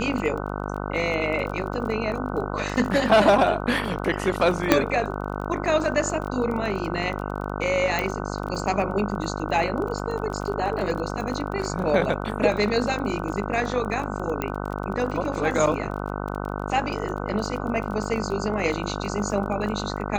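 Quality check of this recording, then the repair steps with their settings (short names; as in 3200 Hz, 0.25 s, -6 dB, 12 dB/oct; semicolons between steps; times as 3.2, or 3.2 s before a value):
buzz 50 Hz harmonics 30 -30 dBFS
crackle 25/s -31 dBFS
4.72 pop -2 dBFS
7.99 pop -12 dBFS
14.42 pop -12 dBFS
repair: de-click; de-hum 50 Hz, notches 30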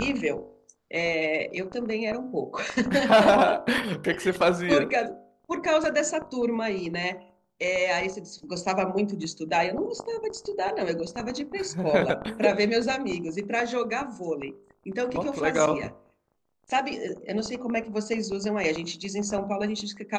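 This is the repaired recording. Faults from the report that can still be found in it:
none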